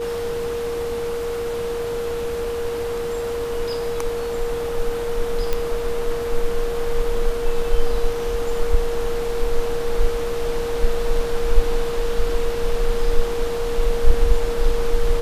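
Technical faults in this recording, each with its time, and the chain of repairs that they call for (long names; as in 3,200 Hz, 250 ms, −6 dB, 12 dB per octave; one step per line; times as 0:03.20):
whistle 470 Hz −23 dBFS
0:05.53: click −8 dBFS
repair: click removal
notch filter 470 Hz, Q 30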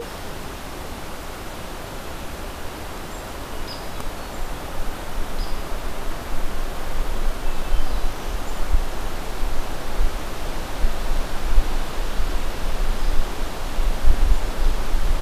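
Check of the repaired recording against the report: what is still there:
none of them is left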